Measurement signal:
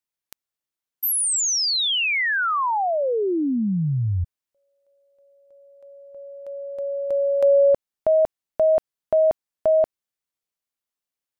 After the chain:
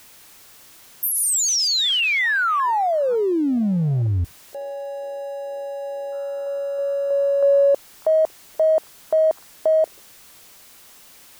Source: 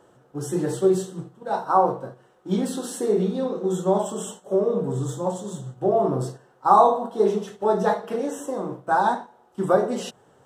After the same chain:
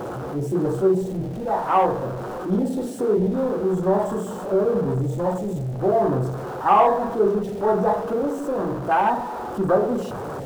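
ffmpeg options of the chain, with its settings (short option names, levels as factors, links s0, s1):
-af "aeval=exprs='val(0)+0.5*0.075*sgn(val(0))':c=same,acontrast=21,afwtdn=0.0794,volume=0.531"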